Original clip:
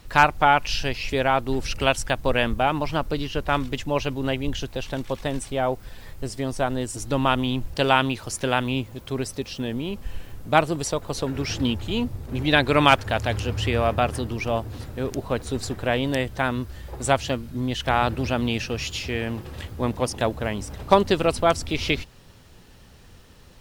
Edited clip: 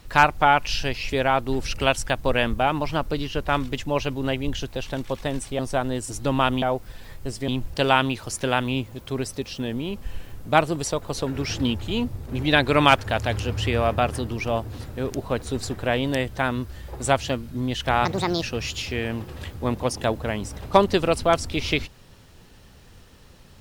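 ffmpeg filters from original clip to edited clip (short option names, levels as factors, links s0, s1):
-filter_complex "[0:a]asplit=6[s0][s1][s2][s3][s4][s5];[s0]atrim=end=5.592[s6];[s1]atrim=start=6.448:end=7.482[s7];[s2]atrim=start=5.588:end=6.452[s8];[s3]atrim=start=7.478:end=18.054[s9];[s4]atrim=start=18.05:end=18.59,asetpts=PTS-STARTPTS,asetrate=64386,aresample=44100[s10];[s5]atrim=start=18.586[s11];[s6][s7]acrossfade=d=0.004:c1=hsin:c2=hsin[s12];[s12][s8]acrossfade=d=0.004:c1=hsin:c2=hsin[s13];[s13][s9]acrossfade=d=0.004:c1=hsin:c2=hsin[s14];[s14][s10]acrossfade=d=0.004:c1=hsin:c2=hsin[s15];[s15][s11]acrossfade=d=0.004:c1=hsin:c2=hsin"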